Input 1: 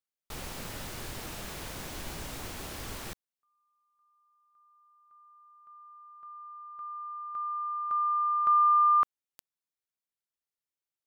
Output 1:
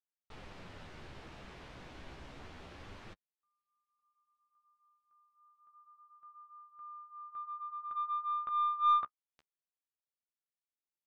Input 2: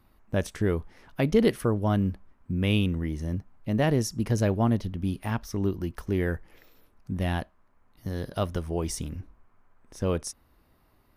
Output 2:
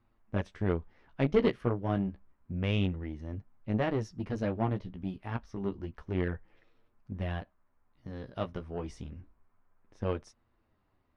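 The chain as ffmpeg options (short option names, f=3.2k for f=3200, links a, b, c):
-af "flanger=delay=8.5:depth=7.9:regen=-18:speed=0.29:shape=sinusoidal,aeval=exprs='0.266*(cos(1*acos(clip(val(0)/0.266,-1,1)))-cos(1*PI/2))+0.0133*(cos(2*acos(clip(val(0)/0.266,-1,1)))-cos(2*PI/2))+0.0188*(cos(7*acos(clip(val(0)/0.266,-1,1)))-cos(7*PI/2))':c=same,lowpass=3.3k"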